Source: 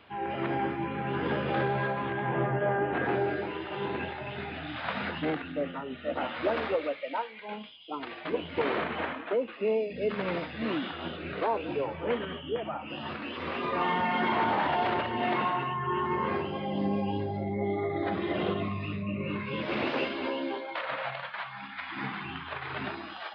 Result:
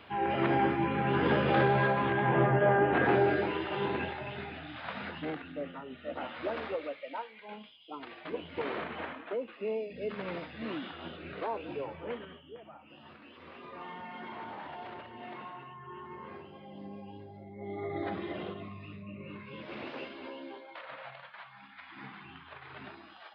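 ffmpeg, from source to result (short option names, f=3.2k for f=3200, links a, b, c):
-af "volume=15dB,afade=t=out:st=3.45:d=1.23:silence=0.334965,afade=t=out:st=11.91:d=0.57:silence=0.334965,afade=t=in:st=17.55:d=0.43:silence=0.251189,afade=t=out:st=17.98:d=0.56:silence=0.421697"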